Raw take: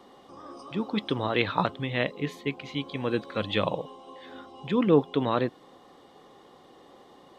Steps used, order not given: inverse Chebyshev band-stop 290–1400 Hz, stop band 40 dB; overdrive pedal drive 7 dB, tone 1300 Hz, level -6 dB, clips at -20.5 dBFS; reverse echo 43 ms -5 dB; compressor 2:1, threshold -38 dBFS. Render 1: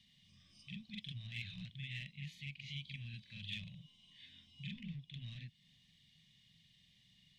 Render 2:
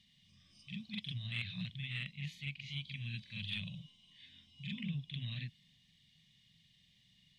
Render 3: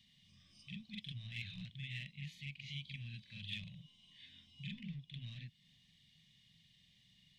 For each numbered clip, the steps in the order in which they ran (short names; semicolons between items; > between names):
reverse echo > overdrive pedal > compressor > inverse Chebyshev band-stop; inverse Chebyshev band-stop > overdrive pedal > reverse echo > compressor; overdrive pedal > reverse echo > compressor > inverse Chebyshev band-stop